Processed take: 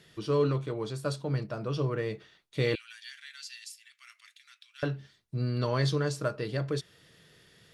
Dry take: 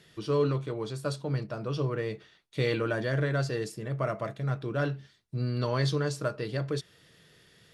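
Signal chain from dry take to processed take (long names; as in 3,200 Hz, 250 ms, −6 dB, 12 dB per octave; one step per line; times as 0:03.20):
0:02.75–0:04.83: inverse Chebyshev high-pass filter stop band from 540 Hz, stop band 70 dB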